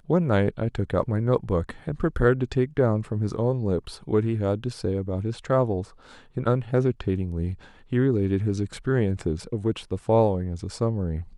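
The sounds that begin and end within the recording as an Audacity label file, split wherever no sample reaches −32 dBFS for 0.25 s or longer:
6.370000	7.540000	sound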